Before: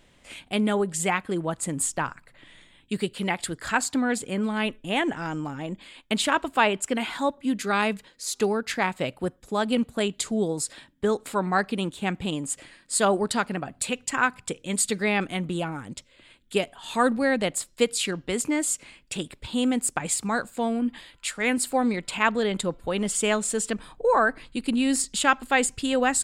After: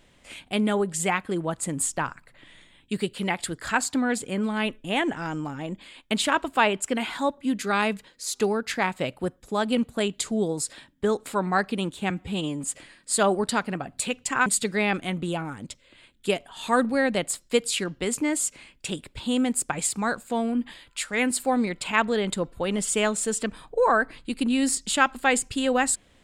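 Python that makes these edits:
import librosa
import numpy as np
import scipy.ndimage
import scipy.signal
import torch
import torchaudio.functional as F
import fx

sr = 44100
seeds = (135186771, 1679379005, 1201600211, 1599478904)

y = fx.edit(x, sr, fx.stretch_span(start_s=12.1, length_s=0.36, factor=1.5),
    fx.cut(start_s=14.28, length_s=0.45), tone=tone)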